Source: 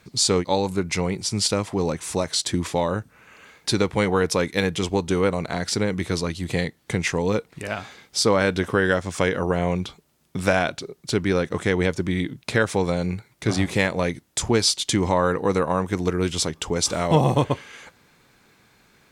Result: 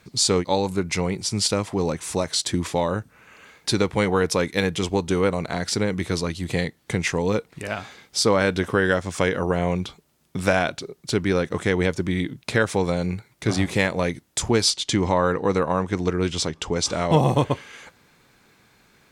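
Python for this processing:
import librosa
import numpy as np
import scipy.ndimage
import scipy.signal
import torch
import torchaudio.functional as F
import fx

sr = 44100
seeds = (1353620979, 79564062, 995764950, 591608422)

y = fx.lowpass(x, sr, hz=7100.0, slope=12, at=(14.7, 17.12))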